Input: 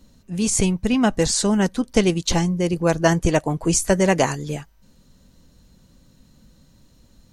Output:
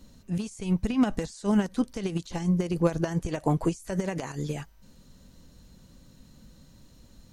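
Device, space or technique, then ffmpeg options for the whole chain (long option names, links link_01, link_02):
de-esser from a sidechain: -filter_complex "[0:a]asplit=2[link_01][link_02];[link_02]highpass=4200,apad=whole_len=322932[link_03];[link_01][link_03]sidechaincompress=threshold=-45dB:ratio=8:attack=1.3:release=48"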